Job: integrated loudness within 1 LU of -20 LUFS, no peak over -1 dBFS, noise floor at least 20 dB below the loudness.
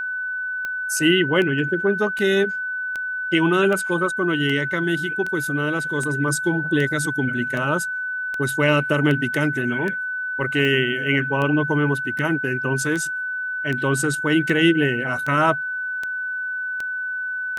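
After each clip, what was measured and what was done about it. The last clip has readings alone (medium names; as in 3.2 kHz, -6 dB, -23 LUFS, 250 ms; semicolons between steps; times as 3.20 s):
clicks found 23; steady tone 1.5 kHz; tone level -24 dBFS; loudness -21.5 LUFS; peak level -5.0 dBFS; loudness target -20.0 LUFS
-> de-click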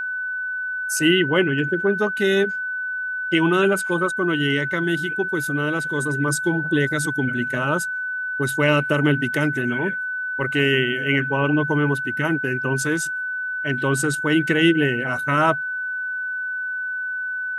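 clicks found 0; steady tone 1.5 kHz; tone level -24 dBFS
-> band-stop 1.5 kHz, Q 30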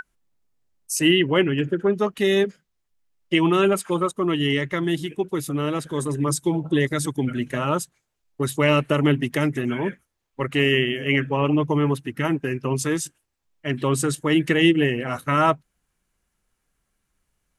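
steady tone not found; loudness -22.5 LUFS; peak level -5.5 dBFS; loudness target -20.0 LUFS
-> trim +2.5 dB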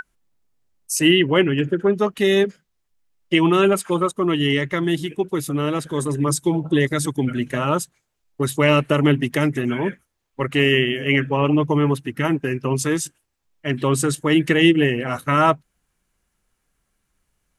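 loudness -20.0 LUFS; peak level -3.0 dBFS; noise floor -74 dBFS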